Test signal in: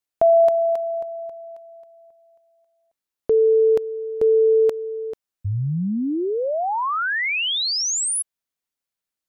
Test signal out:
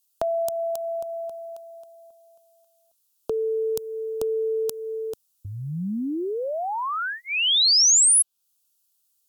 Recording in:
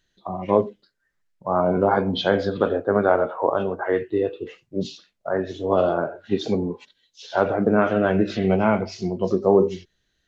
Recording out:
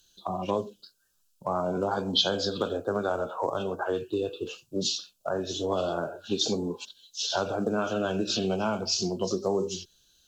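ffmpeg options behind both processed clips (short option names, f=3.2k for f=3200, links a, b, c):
-filter_complex "[0:a]asuperstop=centerf=2000:order=4:qfactor=1.9,highshelf=f=2.6k:g=11,acrossover=split=190|4500[a][b][c];[a]acompressor=threshold=-41dB:ratio=3[d];[b]acompressor=threshold=-28dB:ratio=3[e];[c]acompressor=threshold=-29dB:ratio=3[f];[d][e][f]amix=inputs=3:normalize=0,aemphasis=mode=production:type=cd"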